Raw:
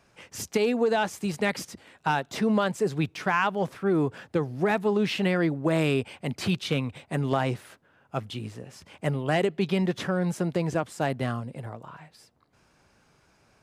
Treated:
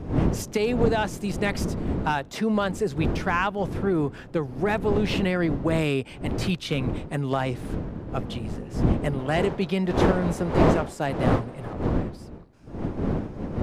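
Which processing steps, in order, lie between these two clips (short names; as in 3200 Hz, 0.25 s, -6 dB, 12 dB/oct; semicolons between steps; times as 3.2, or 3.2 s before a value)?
wind noise 260 Hz -28 dBFS, from 9.18 s 500 Hz, from 11.72 s 300 Hz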